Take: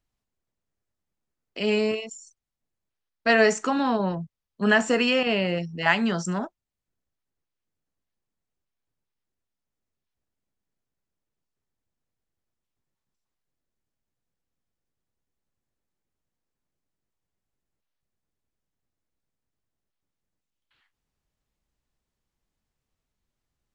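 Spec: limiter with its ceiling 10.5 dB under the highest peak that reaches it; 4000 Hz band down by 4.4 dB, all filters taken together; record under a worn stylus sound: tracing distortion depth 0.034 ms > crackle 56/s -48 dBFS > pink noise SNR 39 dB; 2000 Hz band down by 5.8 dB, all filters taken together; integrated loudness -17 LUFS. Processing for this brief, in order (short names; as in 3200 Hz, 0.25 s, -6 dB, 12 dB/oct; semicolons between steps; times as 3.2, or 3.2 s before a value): bell 2000 Hz -6.5 dB; bell 4000 Hz -3 dB; limiter -19.5 dBFS; tracing distortion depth 0.034 ms; crackle 56/s -48 dBFS; pink noise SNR 39 dB; gain +12.5 dB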